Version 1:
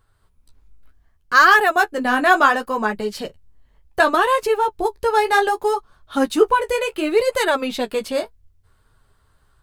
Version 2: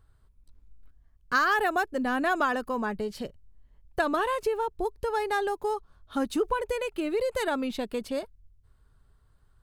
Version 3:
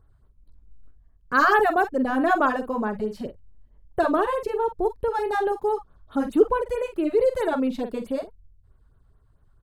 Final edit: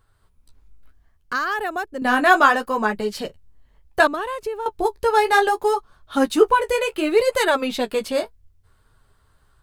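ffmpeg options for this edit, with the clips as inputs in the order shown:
-filter_complex "[1:a]asplit=2[s0][s1];[0:a]asplit=3[s2][s3][s4];[s2]atrim=end=1.332[s5];[s0]atrim=start=1.328:end=2.022[s6];[s3]atrim=start=2.018:end=4.072[s7];[s1]atrim=start=4.068:end=4.662[s8];[s4]atrim=start=4.658[s9];[s5][s6]acrossfade=d=0.004:c1=hsin:c2=hsin[s10];[s10][s7]acrossfade=d=0.004:c1=hsin:c2=hsin[s11];[s11][s8]acrossfade=d=0.004:c1=hsin:c2=hsin[s12];[s12][s9]acrossfade=d=0.004:c1=hsin:c2=hsin"

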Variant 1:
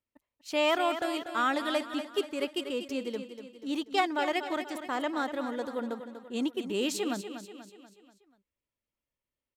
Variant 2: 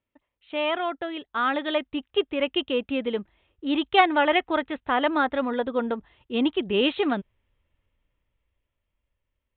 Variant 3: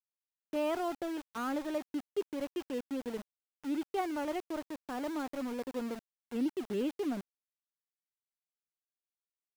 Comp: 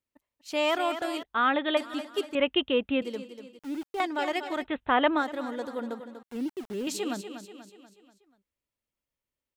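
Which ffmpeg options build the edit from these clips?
-filter_complex "[1:a]asplit=3[s0][s1][s2];[2:a]asplit=2[s3][s4];[0:a]asplit=6[s5][s6][s7][s8][s9][s10];[s5]atrim=end=1.232[s11];[s0]atrim=start=1.228:end=1.772[s12];[s6]atrim=start=1.768:end=2.352[s13];[s1]atrim=start=2.348:end=3.022[s14];[s7]atrim=start=3.018:end=3.592[s15];[s3]atrim=start=3.588:end=4.002[s16];[s8]atrim=start=3.998:end=4.67[s17];[s2]atrim=start=4.57:end=5.24[s18];[s9]atrim=start=5.14:end=6.232[s19];[s4]atrim=start=6.228:end=6.872[s20];[s10]atrim=start=6.868[s21];[s11][s12]acrossfade=d=0.004:c1=hsin:c2=hsin[s22];[s22][s13]acrossfade=d=0.004:c1=hsin:c2=hsin[s23];[s23][s14]acrossfade=d=0.004:c1=hsin:c2=hsin[s24];[s24][s15]acrossfade=d=0.004:c1=hsin:c2=hsin[s25];[s25][s16]acrossfade=d=0.004:c1=hsin:c2=hsin[s26];[s26][s17]acrossfade=d=0.004:c1=hsin:c2=hsin[s27];[s27][s18]acrossfade=d=0.1:c1=tri:c2=tri[s28];[s28][s19]acrossfade=d=0.1:c1=tri:c2=tri[s29];[s29][s20]acrossfade=d=0.004:c1=hsin:c2=hsin[s30];[s30][s21]acrossfade=d=0.004:c1=hsin:c2=hsin"

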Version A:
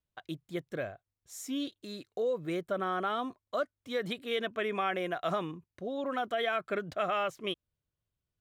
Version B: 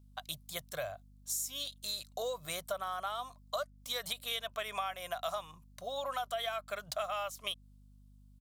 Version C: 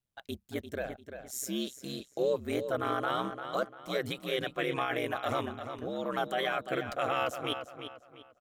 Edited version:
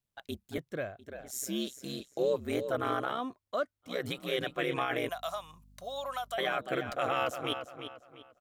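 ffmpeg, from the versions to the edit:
-filter_complex "[0:a]asplit=2[s0][s1];[2:a]asplit=4[s2][s3][s4][s5];[s2]atrim=end=0.582[s6];[s0]atrim=start=0.578:end=0.992[s7];[s3]atrim=start=0.988:end=3.23[s8];[s1]atrim=start=2.99:end=4.06[s9];[s4]atrim=start=3.82:end=5.092[s10];[1:a]atrim=start=5.088:end=6.382[s11];[s5]atrim=start=6.378[s12];[s6][s7]acrossfade=d=0.004:c1=hsin:c2=hsin[s13];[s13][s8]acrossfade=d=0.004:c1=hsin:c2=hsin[s14];[s14][s9]acrossfade=d=0.24:c1=tri:c2=tri[s15];[s15][s10]acrossfade=d=0.24:c1=tri:c2=tri[s16];[s16][s11]acrossfade=d=0.004:c1=hsin:c2=hsin[s17];[s17][s12]acrossfade=d=0.004:c1=hsin:c2=hsin"

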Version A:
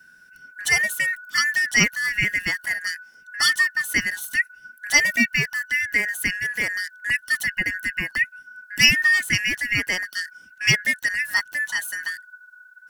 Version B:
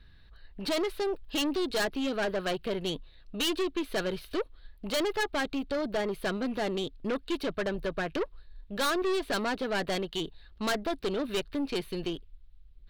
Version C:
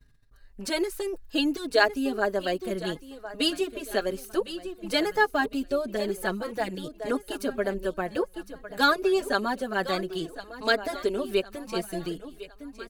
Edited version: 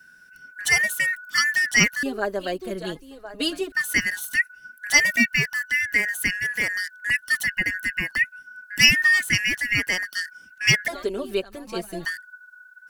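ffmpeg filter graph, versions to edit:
-filter_complex "[2:a]asplit=2[s0][s1];[0:a]asplit=3[s2][s3][s4];[s2]atrim=end=2.032[s5];[s0]atrim=start=2.028:end=3.722[s6];[s3]atrim=start=3.718:end=10.882[s7];[s1]atrim=start=10.878:end=12.052[s8];[s4]atrim=start=12.048[s9];[s5][s6]acrossfade=d=0.004:c1=hsin:c2=hsin[s10];[s10][s7]acrossfade=d=0.004:c1=hsin:c2=hsin[s11];[s11][s8]acrossfade=d=0.004:c1=hsin:c2=hsin[s12];[s12][s9]acrossfade=d=0.004:c1=hsin:c2=hsin"

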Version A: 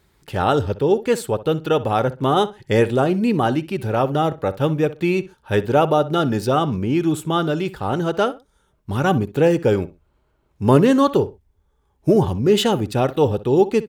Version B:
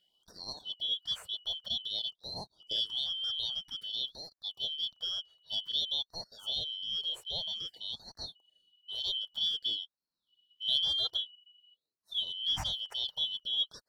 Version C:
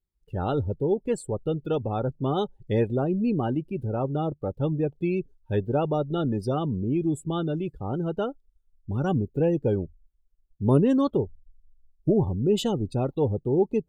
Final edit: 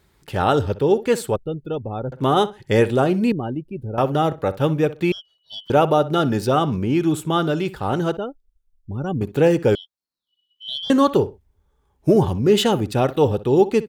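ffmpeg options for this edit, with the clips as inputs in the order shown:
-filter_complex "[2:a]asplit=3[s0][s1][s2];[1:a]asplit=2[s3][s4];[0:a]asplit=6[s5][s6][s7][s8][s9][s10];[s5]atrim=end=1.362[s11];[s0]atrim=start=1.358:end=2.122[s12];[s6]atrim=start=2.118:end=3.322[s13];[s1]atrim=start=3.318:end=3.982[s14];[s7]atrim=start=3.978:end=5.122[s15];[s3]atrim=start=5.118:end=5.702[s16];[s8]atrim=start=5.698:end=8.172[s17];[s2]atrim=start=8.168:end=9.212[s18];[s9]atrim=start=9.208:end=9.752[s19];[s4]atrim=start=9.748:end=10.902[s20];[s10]atrim=start=10.898[s21];[s11][s12]acrossfade=d=0.004:c1=hsin:c2=hsin[s22];[s22][s13]acrossfade=d=0.004:c1=hsin:c2=hsin[s23];[s23][s14]acrossfade=d=0.004:c1=hsin:c2=hsin[s24];[s24][s15]acrossfade=d=0.004:c1=hsin:c2=hsin[s25];[s25][s16]acrossfade=d=0.004:c1=hsin:c2=hsin[s26];[s26][s17]acrossfade=d=0.004:c1=hsin:c2=hsin[s27];[s27][s18]acrossfade=d=0.004:c1=hsin:c2=hsin[s28];[s28][s19]acrossfade=d=0.004:c1=hsin:c2=hsin[s29];[s29][s20]acrossfade=d=0.004:c1=hsin:c2=hsin[s30];[s30][s21]acrossfade=d=0.004:c1=hsin:c2=hsin"

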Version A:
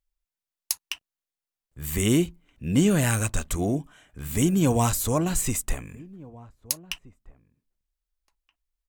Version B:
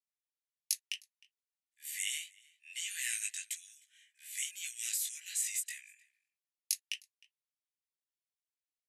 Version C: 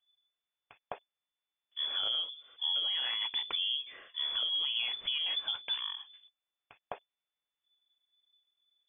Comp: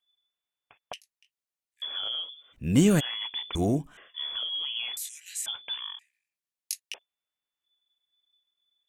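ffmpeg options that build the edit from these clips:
-filter_complex "[1:a]asplit=3[s0][s1][s2];[0:a]asplit=2[s3][s4];[2:a]asplit=6[s5][s6][s7][s8][s9][s10];[s5]atrim=end=0.932[s11];[s0]atrim=start=0.928:end=1.822[s12];[s6]atrim=start=1.818:end=2.54[s13];[s3]atrim=start=2.52:end=3.01[s14];[s7]atrim=start=2.99:end=3.552[s15];[s4]atrim=start=3.548:end=3.972[s16];[s8]atrim=start=3.968:end=4.972[s17];[s1]atrim=start=4.968:end=5.462[s18];[s9]atrim=start=5.458:end=5.992[s19];[s2]atrim=start=5.988:end=6.942[s20];[s10]atrim=start=6.938[s21];[s11][s12]acrossfade=d=0.004:c1=hsin:c2=hsin[s22];[s22][s13]acrossfade=d=0.004:c1=hsin:c2=hsin[s23];[s23][s14]acrossfade=d=0.02:c1=tri:c2=tri[s24];[s24][s15]acrossfade=d=0.02:c1=tri:c2=tri[s25];[s25][s16]acrossfade=d=0.004:c1=hsin:c2=hsin[s26];[s26][s17]acrossfade=d=0.004:c1=hsin:c2=hsin[s27];[s27][s18]acrossfade=d=0.004:c1=hsin:c2=hsin[s28];[s28][s19]acrossfade=d=0.004:c1=hsin:c2=hsin[s29];[s29][s20]acrossfade=d=0.004:c1=hsin:c2=hsin[s30];[s30][s21]acrossfade=d=0.004:c1=hsin:c2=hsin"

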